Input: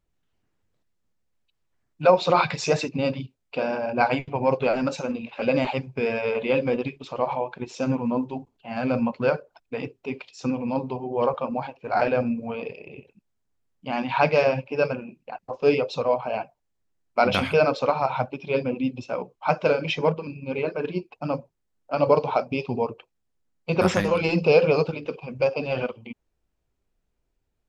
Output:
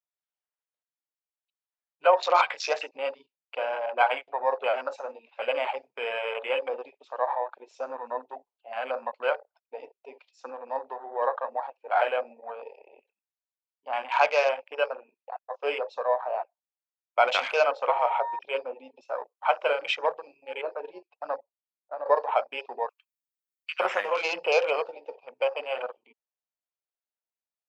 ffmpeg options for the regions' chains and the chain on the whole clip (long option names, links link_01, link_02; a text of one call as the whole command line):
ffmpeg -i in.wav -filter_complex "[0:a]asettb=1/sr,asplit=3[link_01][link_02][link_03];[link_01]atrim=end=17.884[link_04];[link_02]atrim=start=17.88:end=18.39,asetpts=PTS-STARTPTS,afade=type=in:duration=0.004:curve=qsin,afade=type=out:start_time=0.506:duration=0.004:curve=qsin,afreqshift=-70,aeval=exprs='val(0)+0.0355*sin(2*PI*940*n/s)':channel_layout=same[link_05];[link_03]atrim=start=18.386[link_06];[link_04][link_05]acrossfade=duration=0.004:curve1=hsin:curve2=qsin[link_07];[link_07][link_06]acrossfade=duration=0.004:curve1=qsin:curve2=hsin,asettb=1/sr,asplit=3[link_08][link_09][link_10];[link_08]atrim=end=19.054[link_11];[link_09]atrim=start=19.05:end=20.55,asetpts=PTS-STARTPTS,afade=type=in:duration=0.004:curve=qsin,afade=type=out:start_time=1.496:duration=0.004:curve=qsin,acrossover=split=4000[link_12][link_13];[link_13]acompressor=threshold=-53dB:ratio=4:attack=1:release=60[link_14];[link_12][link_14]amix=inputs=2:normalize=0,highshelf=frequency=6500:gain=11.5[link_15];[link_10]atrim=start=20.546[link_16];[link_11][link_15]acrossfade=duration=0.004:curve1=hsin:curve2=qsin[link_17];[link_17][link_16]acrossfade=duration=0.004:curve1=qsin:curve2=hsin,asettb=1/sr,asplit=3[link_18][link_19][link_20];[link_18]atrim=end=21.374[link_21];[link_19]atrim=start=21.37:end=22.06,asetpts=PTS-STARTPTS,afade=type=in:duration=0.004:curve=qsin,afade=type=out:start_time=0.686:duration=0.004:curve=qsin,lowpass=frequency=1100:poles=1,acompressor=threshold=-30dB:ratio=2.5:attack=3.2:release=140:knee=1:detection=peak[link_22];[link_20]atrim=start=22.056[link_23];[link_21][link_22]acrossfade=duration=0.004:curve1=hsin:curve2=qsin[link_24];[link_24][link_23]acrossfade=duration=0.004:curve1=qsin:curve2=hsin,asettb=1/sr,asplit=3[link_25][link_26][link_27];[link_25]atrim=end=22.894[link_28];[link_26]atrim=start=22.89:end=23.8,asetpts=PTS-STARTPTS,afade=type=in:duration=0.004:curve=qsin,afade=type=out:start_time=0.906:duration=0.004:curve=qsin,highpass=frequency=1500:width=0.5412,highpass=frequency=1500:width=1.3066,aemphasis=mode=production:type=50fm[link_29];[link_27]atrim=start=23.796[link_30];[link_28][link_29]acrossfade=duration=0.004:curve1=hsin:curve2=qsin[link_31];[link_31][link_30]acrossfade=duration=0.004:curve1=qsin:curve2=hsin,afwtdn=0.02,highpass=frequency=580:width=0.5412,highpass=frequency=580:width=1.3066" out.wav